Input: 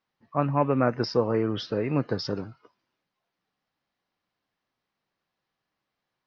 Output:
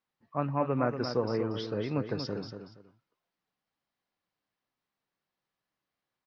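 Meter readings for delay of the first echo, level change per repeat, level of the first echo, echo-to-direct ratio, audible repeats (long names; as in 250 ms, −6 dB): 236 ms, −12.5 dB, −8.0 dB, −8.0 dB, 2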